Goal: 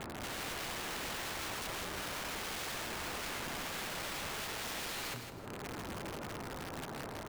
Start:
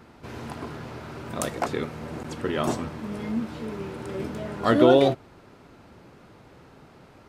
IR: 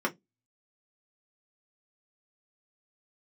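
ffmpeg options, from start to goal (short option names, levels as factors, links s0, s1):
-af "lowpass=1500,bandreject=f=60:t=h:w=6,bandreject=f=120:t=h:w=6,bandreject=f=180:t=h:w=6,bandreject=f=240:t=h:w=6,bandreject=f=300:t=h:w=6,bandreject=f=360:t=h:w=6,acompressor=threshold=0.00562:ratio=2,alimiter=level_in=3.16:limit=0.0631:level=0:latency=1:release=12,volume=0.316,aeval=exprs='(mod(178*val(0)+1,2)-1)/178':c=same,aecho=1:1:160|320|480|640:0.422|0.139|0.0459|0.0152,volume=2.66"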